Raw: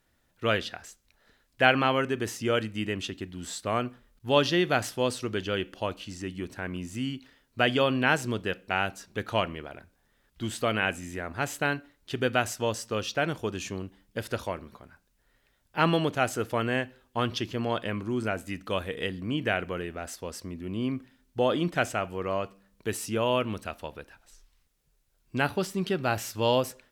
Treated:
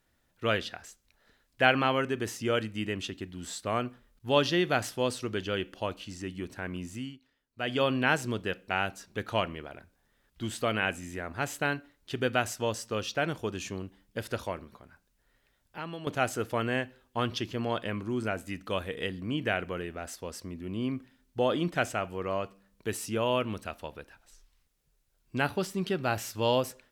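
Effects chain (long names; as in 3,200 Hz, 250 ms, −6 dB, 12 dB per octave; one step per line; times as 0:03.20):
0:06.89–0:07.84: duck −13.5 dB, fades 0.28 s
0:14.64–0:16.07: downward compressor 2 to 1, threshold −45 dBFS, peak gain reduction 14.5 dB
level −2 dB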